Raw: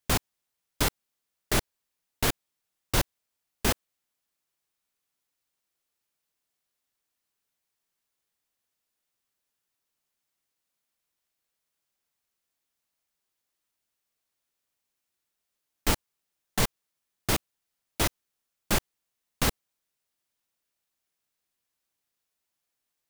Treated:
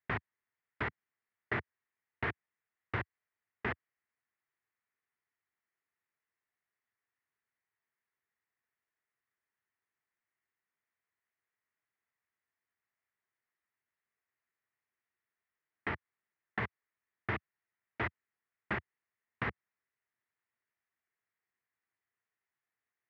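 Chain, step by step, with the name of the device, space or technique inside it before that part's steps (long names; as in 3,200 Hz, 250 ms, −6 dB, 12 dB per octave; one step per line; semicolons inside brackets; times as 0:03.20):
bass amplifier (downward compressor, threshold −24 dBFS, peak gain reduction 6 dB; loudspeaker in its box 84–2,200 Hz, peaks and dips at 170 Hz −9 dB, 280 Hz −8 dB, 550 Hz −8 dB, 800 Hz −3 dB, 1,900 Hz +8 dB)
level −2.5 dB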